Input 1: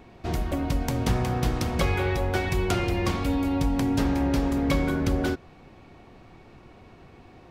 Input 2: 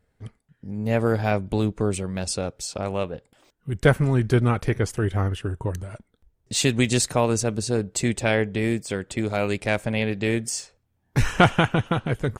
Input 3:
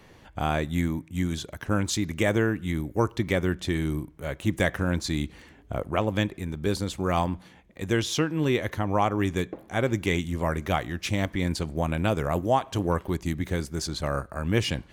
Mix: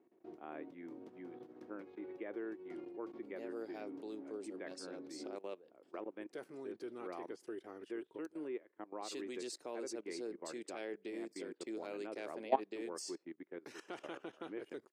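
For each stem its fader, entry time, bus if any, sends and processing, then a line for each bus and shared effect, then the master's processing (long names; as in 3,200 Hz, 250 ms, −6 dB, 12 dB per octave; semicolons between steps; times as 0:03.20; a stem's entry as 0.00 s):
−15.5 dB, 0.00 s, no send, spectral tilt −4 dB per octave; downward compressor 3 to 1, threshold −14 dBFS, peak gain reduction 8 dB; brickwall limiter −10.5 dBFS, peak gain reduction 4.5 dB
−8.0 dB, 2.50 s, no send, parametric band 4,800 Hz +7.5 dB 0.51 octaves
+2.5 dB, 0.00 s, no send, low-pass filter 2,500 Hz 24 dB per octave; expander for the loud parts 2.5 to 1, over −34 dBFS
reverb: not used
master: output level in coarse steps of 18 dB; four-pole ladder high-pass 300 Hz, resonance 55%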